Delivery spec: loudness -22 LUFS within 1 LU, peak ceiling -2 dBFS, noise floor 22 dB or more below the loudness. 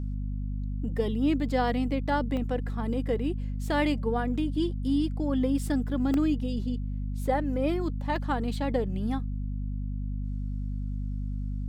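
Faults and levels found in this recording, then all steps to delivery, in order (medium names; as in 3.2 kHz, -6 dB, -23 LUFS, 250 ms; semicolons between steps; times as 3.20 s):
dropouts 3; longest dropout 1.5 ms; hum 50 Hz; highest harmonic 250 Hz; hum level -29 dBFS; loudness -29.5 LUFS; peak level -13.5 dBFS; loudness target -22.0 LUFS
-> interpolate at 2.37/6.14/8.16 s, 1.5 ms; hum notches 50/100/150/200/250 Hz; trim +7.5 dB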